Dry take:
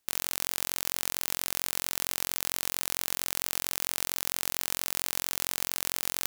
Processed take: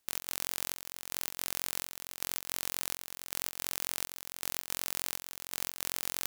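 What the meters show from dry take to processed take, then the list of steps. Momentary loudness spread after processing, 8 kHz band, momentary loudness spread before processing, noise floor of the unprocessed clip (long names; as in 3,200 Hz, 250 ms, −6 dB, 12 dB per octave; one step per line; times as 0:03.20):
5 LU, −5.5 dB, 0 LU, −77 dBFS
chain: gate pattern "xx.xxxxx...." 163 BPM −12 dB
soft clipping −5.5 dBFS, distortion −21 dB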